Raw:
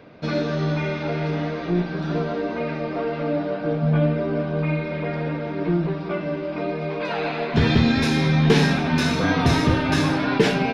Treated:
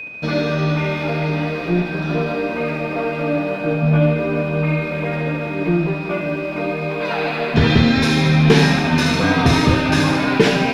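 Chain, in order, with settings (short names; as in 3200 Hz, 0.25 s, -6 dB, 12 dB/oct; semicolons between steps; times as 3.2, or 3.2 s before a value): crossover distortion -53 dBFS; whine 2500 Hz -32 dBFS; thinning echo 73 ms, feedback 63%, high-pass 840 Hz, level -6 dB; gain +4 dB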